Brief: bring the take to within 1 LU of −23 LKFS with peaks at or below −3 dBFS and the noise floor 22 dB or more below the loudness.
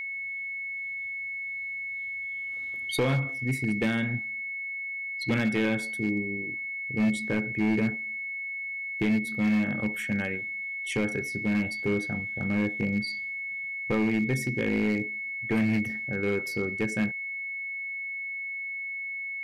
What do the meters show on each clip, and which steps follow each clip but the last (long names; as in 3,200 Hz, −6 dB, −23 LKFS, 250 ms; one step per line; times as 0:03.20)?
share of clipped samples 1.5%; peaks flattened at −20.0 dBFS; interfering tone 2,200 Hz; level of the tone −32 dBFS; integrated loudness −29.0 LKFS; sample peak −20.0 dBFS; target loudness −23.0 LKFS
→ clipped peaks rebuilt −20 dBFS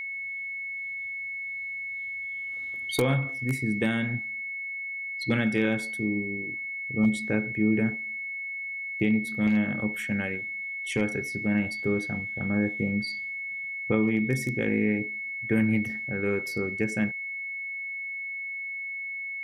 share of clipped samples 0.0%; interfering tone 2,200 Hz; level of the tone −32 dBFS
→ notch filter 2,200 Hz, Q 30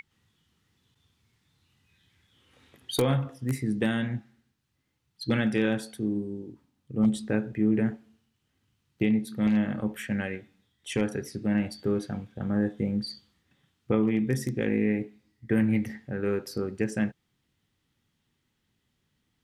interfering tone none found; integrated loudness −28.5 LKFS; sample peak −10.5 dBFS; target loudness −23.0 LKFS
→ level +5.5 dB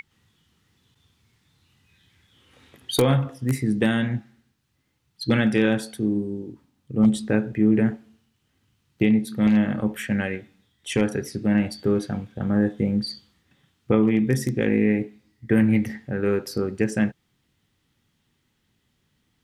integrated loudness −23.0 LKFS; sample peak −5.0 dBFS; background noise floor −71 dBFS